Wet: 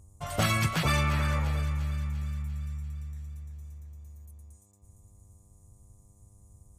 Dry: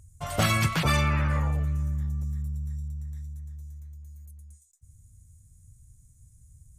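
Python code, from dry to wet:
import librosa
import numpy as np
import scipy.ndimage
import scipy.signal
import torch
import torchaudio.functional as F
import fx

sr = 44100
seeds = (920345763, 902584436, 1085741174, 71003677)

p1 = fx.dmg_buzz(x, sr, base_hz=100.0, harmonics=12, level_db=-62.0, tilt_db=-7, odd_only=False)
p2 = p1 + fx.echo_thinned(p1, sr, ms=346, feedback_pct=55, hz=600.0, wet_db=-10, dry=0)
y = F.gain(torch.from_numpy(p2), -2.5).numpy()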